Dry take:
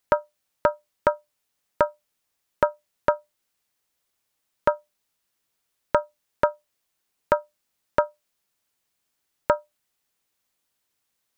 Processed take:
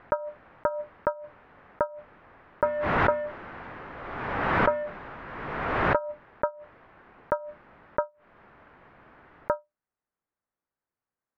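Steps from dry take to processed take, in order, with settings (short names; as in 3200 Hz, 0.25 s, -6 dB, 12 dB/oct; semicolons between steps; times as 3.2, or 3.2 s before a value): 2.63–5.96 zero-crossing step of -18.5 dBFS; LPF 1700 Hz 24 dB/oct; backwards sustainer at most 30 dB/s; gain -6 dB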